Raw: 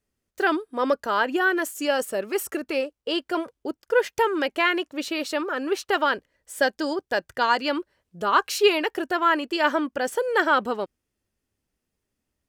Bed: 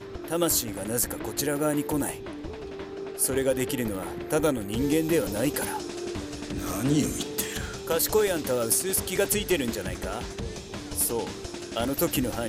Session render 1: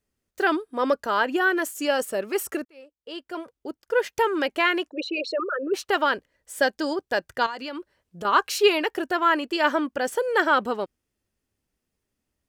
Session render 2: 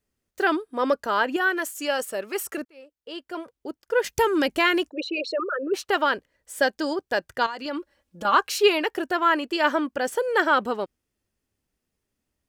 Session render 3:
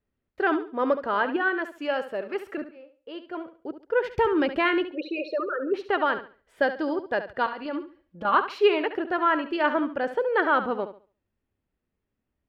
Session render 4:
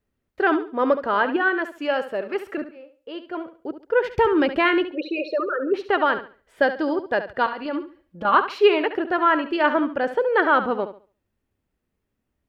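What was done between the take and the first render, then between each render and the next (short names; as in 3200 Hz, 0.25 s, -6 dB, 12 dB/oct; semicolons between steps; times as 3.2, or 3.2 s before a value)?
2.65–4.32 fade in; 4.89–5.74 formant sharpening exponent 3; 7.46–8.25 compressor, threshold -30 dBFS
1.36–2.58 low shelf 480 Hz -6.5 dB; 4.04–4.9 tone controls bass +14 dB, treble +8 dB; 7.65–8.35 comb 3.6 ms, depth 79%
air absorption 380 m; on a send: flutter echo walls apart 12 m, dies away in 0.37 s
gain +4 dB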